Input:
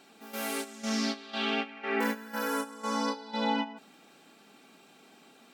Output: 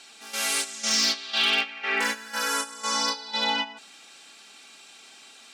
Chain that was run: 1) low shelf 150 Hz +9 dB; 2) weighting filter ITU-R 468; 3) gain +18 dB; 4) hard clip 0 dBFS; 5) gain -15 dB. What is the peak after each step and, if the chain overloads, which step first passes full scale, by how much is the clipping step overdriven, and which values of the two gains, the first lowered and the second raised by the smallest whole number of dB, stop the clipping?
-17.0, -11.0, +7.0, 0.0, -15.0 dBFS; step 3, 7.0 dB; step 3 +11 dB, step 5 -8 dB

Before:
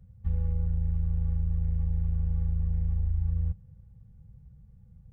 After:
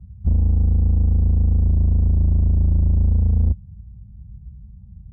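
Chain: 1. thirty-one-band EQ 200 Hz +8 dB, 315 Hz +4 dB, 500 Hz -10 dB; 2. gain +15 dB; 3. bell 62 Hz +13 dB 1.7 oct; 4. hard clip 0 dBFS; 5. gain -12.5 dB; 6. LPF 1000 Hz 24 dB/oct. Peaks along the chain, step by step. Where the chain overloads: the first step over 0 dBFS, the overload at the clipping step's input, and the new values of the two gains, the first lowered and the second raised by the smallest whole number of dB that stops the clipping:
-18.5, -3.5, +6.0, 0.0, -12.5, -12.5 dBFS; step 3, 6.0 dB; step 2 +9 dB, step 5 -6.5 dB

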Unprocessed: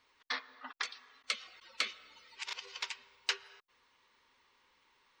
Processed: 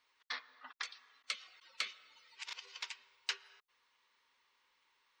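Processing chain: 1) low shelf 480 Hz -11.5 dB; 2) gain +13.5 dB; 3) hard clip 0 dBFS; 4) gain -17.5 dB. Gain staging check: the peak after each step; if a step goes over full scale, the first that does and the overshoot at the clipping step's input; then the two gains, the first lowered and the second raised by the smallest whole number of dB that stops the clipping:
-16.5, -3.0, -3.0, -20.5 dBFS; no overload

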